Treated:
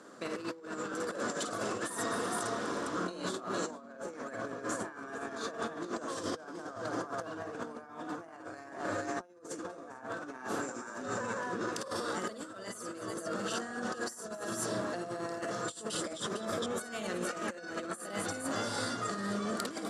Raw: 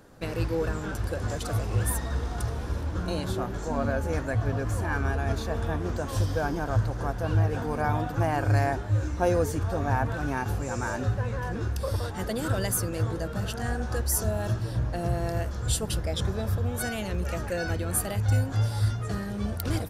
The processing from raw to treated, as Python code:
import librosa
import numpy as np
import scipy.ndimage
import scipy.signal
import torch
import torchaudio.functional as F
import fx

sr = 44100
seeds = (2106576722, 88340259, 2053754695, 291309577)

p1 = fx.cabinet(x, sr, low_hz=220.0, low_slope=24, high_hz=9400.0, hz=(830.0, 1200.0, 2500.0, 7500.0), db=(-5, 7, -4, 5))
p2 = p1 + fx.echo_multitap(p1, sr, ms=(51, 54, 60, 250, 361, 457), db=(-8.0, -13.0, -11.0, -16.0, -19.0, -8.5), dry=0)
p3 = fx.over_compress(p2, sr, threshold_db=-35.0, ratio=-0.5)
y = p3 * 10.0 ** (-2.5 / 20.0)